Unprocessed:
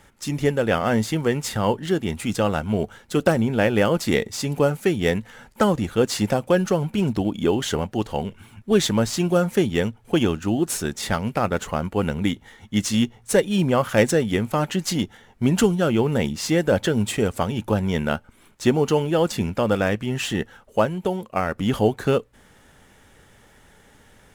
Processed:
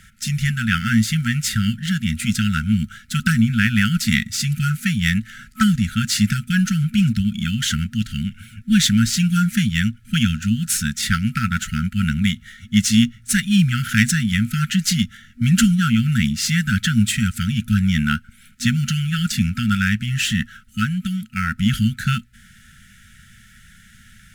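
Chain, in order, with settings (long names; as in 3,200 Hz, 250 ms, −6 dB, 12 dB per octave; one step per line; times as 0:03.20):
brick-wall band-stop 240–1,300 Hz
level +6.5 dB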